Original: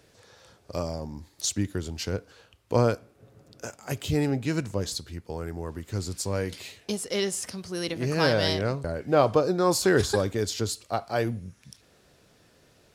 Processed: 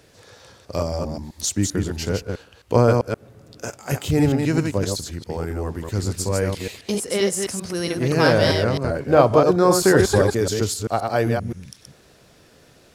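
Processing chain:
delay that plays each chunk backwards 131 ms, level −4 dB
dynamic equaliser 3,800 Hz, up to −5 dB, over −43 dBFS, Q 1.1
level +6 dB

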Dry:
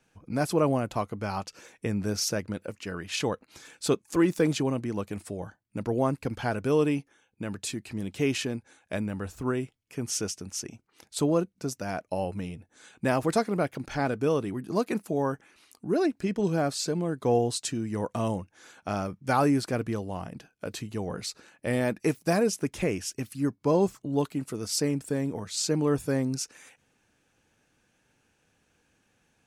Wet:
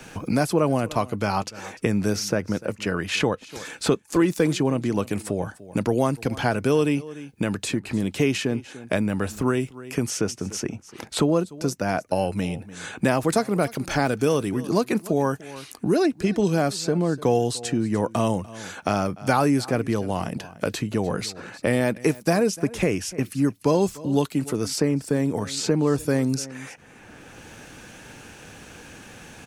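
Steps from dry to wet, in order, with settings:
0:13.32–0:14.49: high-shelf EQ 5,300 Hz +10 dB
on a send: single-tap delay 295 ms −22 dB
on the sum: multiband upward and downward compressor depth 70%
level +5 dB

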